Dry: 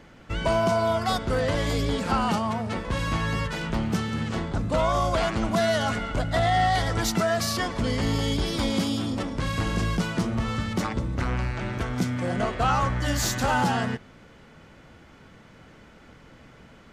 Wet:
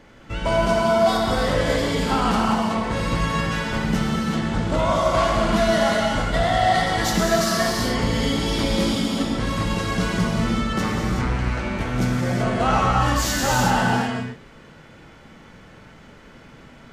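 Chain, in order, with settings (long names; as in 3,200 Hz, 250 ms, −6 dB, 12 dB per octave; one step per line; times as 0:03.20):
reverb whose tail is shaped and stops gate 410 ms flat, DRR −3.5 dB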